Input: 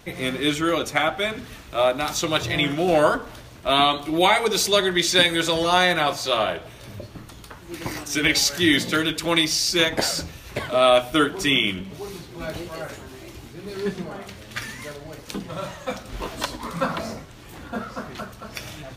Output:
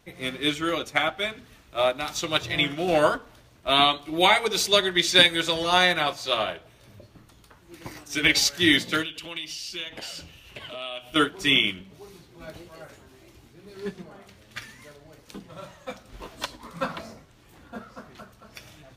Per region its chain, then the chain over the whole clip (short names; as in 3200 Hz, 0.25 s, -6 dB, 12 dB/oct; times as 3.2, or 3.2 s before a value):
9.03–11.16 bell 2900 Hz +15 dB 0.34 oct + compressor 4:1, threshold -27 dBFS + hard clip -17 dBFS
whole clip: dynamic EQ 3000 Hz, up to +4 dB, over -34 dBFS, Q 0.77; upward expander 1.5:1, over -33 dBFS; gain -1 dB